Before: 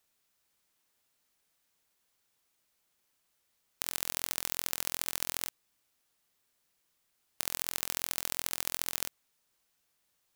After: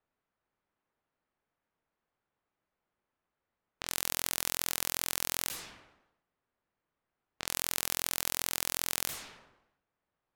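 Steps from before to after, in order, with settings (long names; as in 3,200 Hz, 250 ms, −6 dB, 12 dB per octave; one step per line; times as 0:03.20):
low-pass that shuts in the quiet parts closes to 1,300 Hz, open at −46.5 dBFS
level that may fall only so fast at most 67 dB per second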